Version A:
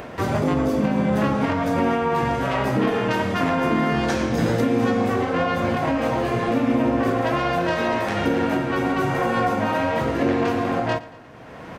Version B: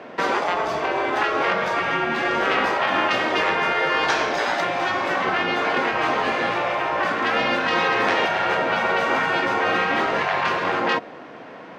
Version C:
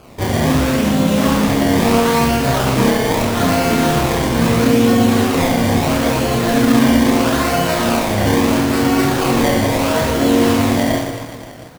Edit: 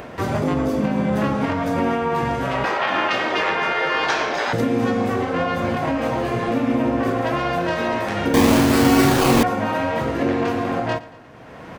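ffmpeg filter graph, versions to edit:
ffmpeg -i take0.wav -i take1.wav -i take2.wav -filter_complex "[0:a]asplit=3[link_01][link_02][link_03];[link_01]atrim=end=2.642[link_04];[1:a]atrim=start=2.638:end=4.532[link_05];[link_02]atrim=start=4.528:end=8.342[link_06];[2:a]atrim=start=8.338:end=9.432[link_07];[link_03]atrim=start=9.428[link_08];[link_04][link_05]acrossfade=duration=0.004:curve1=hsin:curve2=hsin[link_09];[link_09][link_06]acrossfade=duration=0.004:curve1=hsin:curve2=hsin[link_10];[link_10][link_07]acrossfade=duration=0.004:curve1=hsin:curve2=hsin[link_11];[link_11][link_08]acrossfade=duration=0.004:curve1=hsin:curve2=hsin" out.wav

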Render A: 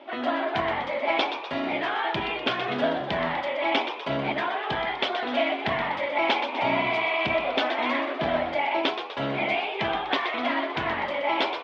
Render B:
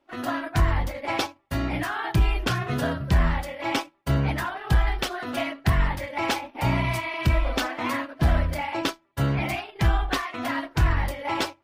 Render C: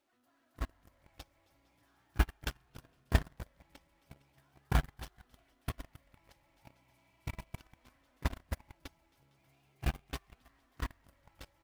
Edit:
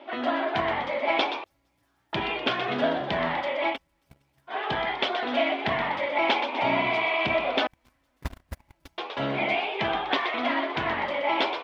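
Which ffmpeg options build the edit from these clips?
ffmpeg -i take0.wav -i take1.wav -i take2.wav -filter_complex "[2:a]asplit=3[link_01][link_02][link_03];[0:a]asplit=4[link_04][link_05][link_06][link_07];[link_04]atrim=end=1.442[link_08];[link_01]atrim=start=1.438:end=2.132[link_09];[link_05]atrim=start=2.128:end=3.78[link_10];[link_02]atrim=start=3.68:end=4.57[link_11];[link_06]atrim=start=4.47:end=7.672[link_12];[link_03]atrim=start=7.668:end=8.982[link_13];[link_07]atrim=start=8.978[link_14];[link_08][link_09]acrossfade=duration=0.004:curve1=hsin:curve2=hsin[link_15];[link_15][link_10]acrossfade=duration=0.004:curve1=hsin:curve2=hsin[link_16];[link_16][link_11]acrossfade=duration=0.1:curve1=tri:curve2=tri[link_17];[link_17][link_12]acrossfade=duration=0.1:curve1=tri:curve2=tri[link_18];[link_18][link_13]acrossfade=duration=0.004:curve1=hsin:curve2=hsin[link_19];[link_19][link_14]acrossfade=duration=0.004:curve1=hsin:curve2=hsin" out.wav

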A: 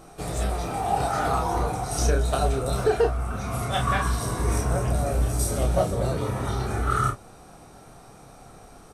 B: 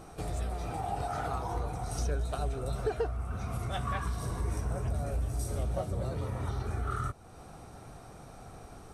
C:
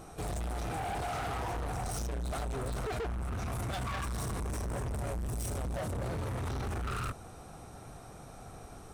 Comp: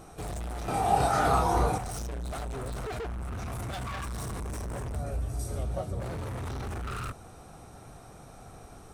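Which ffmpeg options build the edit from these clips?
ffmpeg -i take0.wav -i take1.wav -i take2.wav -filter_complex "[2:a]asplit=3[link_01][link_02][link_03];[link_01]atrim=end=0.682[link_04];[0:a]atrim=start=0.678:end=1.782[link_05];[link_02]atrim=start=1.778:end=4.962[link_06];[1:a]atrim=start=4.958:end=6.002[link_07];[link_03]atrim=start=5.998[link_08];[link_04][link_05]acrossfade=duration=0.004:curve1=hsin:curve2=hsin[link_09];[link_09][link_06]acrossfade=duration=0.004:curve1=hsin:curve2=hsin[link_10];[link_10][link_07]acrossfade=duration=0.004:curve1=hsin:curve2=hsin[link_11];[link_11][link_08]acrossfade=duration=0.004:curve1=hsin:curve2=hsin" out.wav

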